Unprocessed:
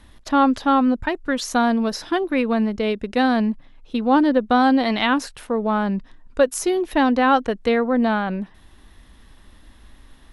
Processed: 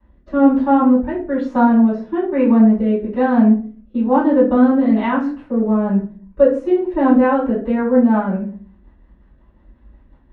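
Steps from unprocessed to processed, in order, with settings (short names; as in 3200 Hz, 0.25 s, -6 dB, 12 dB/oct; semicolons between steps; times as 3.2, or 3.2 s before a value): G.711 law mismatch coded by A; HPF 51 Hz 12 dB/oct; rotary speaker horn 1.1 Hz, later 5.5 Hz, at 5.66; LPF 1300 Hz 12 dB/oct; reverb RT60 0.40 s, pre-delay 3 ms, DRR -12 dB; gain -10 dB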